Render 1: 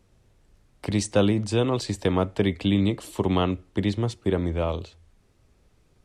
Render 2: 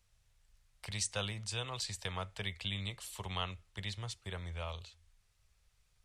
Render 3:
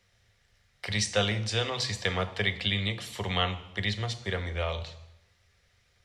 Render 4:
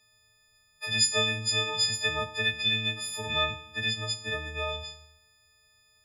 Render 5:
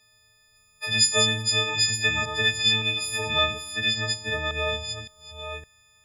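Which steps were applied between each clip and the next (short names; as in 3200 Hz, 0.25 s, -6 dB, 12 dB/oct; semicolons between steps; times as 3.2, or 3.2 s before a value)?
passive tone stack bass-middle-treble 10-0-10; gain -3 dB
reverb RT60 0.85 s, pre-delay 3 ms, DRR 9 dB; gain +5 dB
frequency quantiser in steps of 6 st; gain -5.5 dB
reverse delay 0.564 s, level -7 dB; gain +4 dB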